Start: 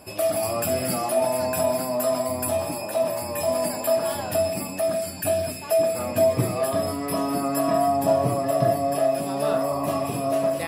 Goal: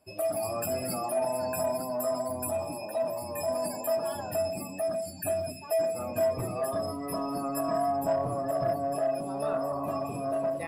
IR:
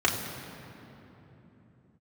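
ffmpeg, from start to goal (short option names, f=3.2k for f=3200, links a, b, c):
-filter_complex "[0:a]afftdn=nr=16:nf=-33,acrossover=split=610[a][b];[a]asoftclip=type=tanh:threshold=-25dB[c];[c][b]amix=inputs=2:normalize=0,volume=-5.5dB"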